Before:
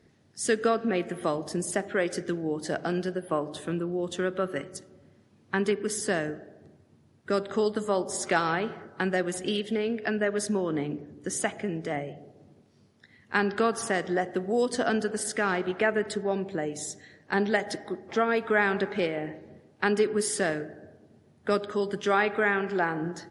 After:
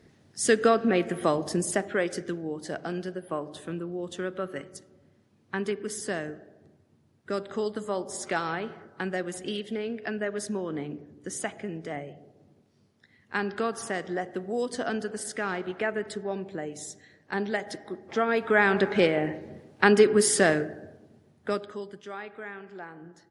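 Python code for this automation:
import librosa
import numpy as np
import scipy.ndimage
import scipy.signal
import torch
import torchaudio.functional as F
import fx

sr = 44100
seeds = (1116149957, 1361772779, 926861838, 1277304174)

y = fx.gain(x, sr, db=fx.line((1.51, 3.5), (2.54, -4.0), (17.81, -4.0), (19.02, 6.0), (20.59, 6.0), (21.49, -2.5), (22.07, -15.0)))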